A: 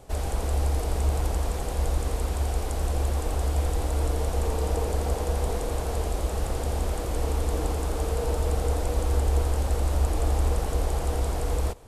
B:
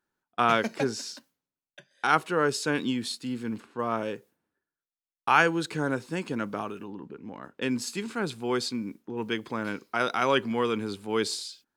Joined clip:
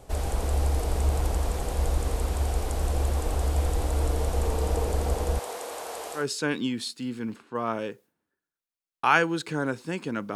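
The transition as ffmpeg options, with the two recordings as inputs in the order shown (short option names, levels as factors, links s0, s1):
-filter_complex "[0:a]asettb=1/sr,asplit=3[s0][s1][s2];[s0]atrim=end=5.394[s3];[s1]atrim=start=5.39:end=6.27,asetpts=PTS-STARTPTS,afade=t=in:d=0.004:c=qsin,afade=t=out:st=0.876:d=0.004:c=qsin,highpass=600[s4];[s2]atrim=start=6.266[s5];[s3][s4]acrossfade=d=0.004:c1=hsin:c2=qsin[s6];[s6][s5]acrossfade=d=0.004:c1=qsin:c2=hsin,apad=whole_dur=10.35,atrim=end=10.35,atrim=end=6.27,asetpts=PTS-STARTPTS[s7];[1:a]atrim=start=2.37:end=6.59,asetpts=PTS-STARTPTS[s8];[s7][s8]acrossfade=d=0.14:c1=tri:c2=tri"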